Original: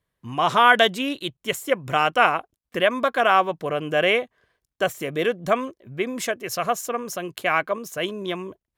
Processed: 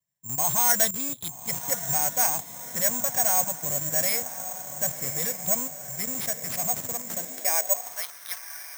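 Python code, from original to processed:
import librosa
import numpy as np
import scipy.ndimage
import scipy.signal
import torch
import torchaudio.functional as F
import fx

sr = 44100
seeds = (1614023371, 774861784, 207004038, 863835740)

p1 = fx.tracing_dist(x, sr, depth_ms=0.044)
p2 = scipy.signal.sosfilt(scipy.signal.butter(2, 85.0, 'highpass', fs=sr, output='sos'), p1)
p3 = fx.fixed_phaser(p2, sr, hz=1900.0, stages=8)
p4 = fx.schmitt(p3, sr, flips_db=-33.0)
p5 = p3 + F.gain(torch.from_numpy(p4), -4.5).numpy()
p6 = fx.vibrato(p5, sr, rate_hz=2.3, depth_cents=58.0)
p7 = p6 + fx.echo_diffused(p6, sr, ms=1138, feedback_pct=58, wet_db=-11.5, dry=0)
p8 = fx.filter_sweep_highpass(p7, sr, from_hz=130.0, to_hz=1400.0, start_s=6.93, end_s=8.14, q=2.1)
p9 = (np.kron(p8[::6], np.eye(6)[0]) * 6)[:len(p8)]
y = F.gain(torch.from_numpy(p9), -12.0).numpy()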